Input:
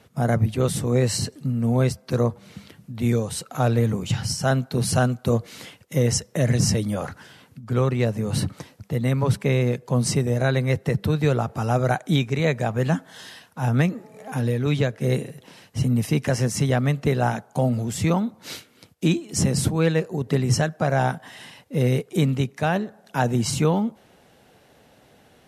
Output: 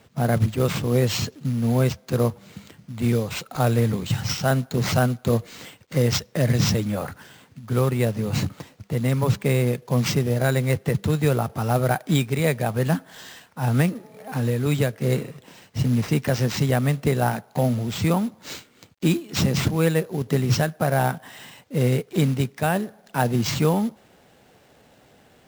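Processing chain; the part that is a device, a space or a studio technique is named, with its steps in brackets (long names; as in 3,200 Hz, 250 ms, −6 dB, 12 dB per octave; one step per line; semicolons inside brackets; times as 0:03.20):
0:03.55–0:04.07: high-shelf EQ 4,900 Hz +6 dB
early companding sampler (sample-rate reduction 11,000 Hz, jitter 0%; log-companded quantiser 6 bits)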